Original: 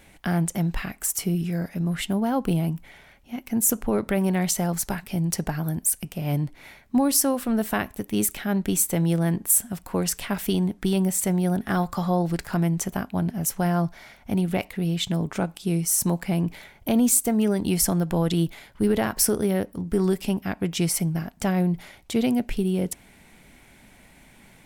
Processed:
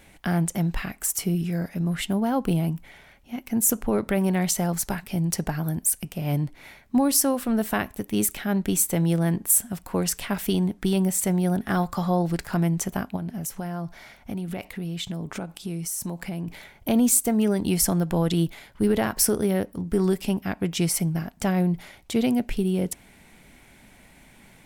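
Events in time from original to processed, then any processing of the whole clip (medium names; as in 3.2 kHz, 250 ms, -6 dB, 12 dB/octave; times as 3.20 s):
13.16–16.48 s: compression 4:1, threshold -28 dBFS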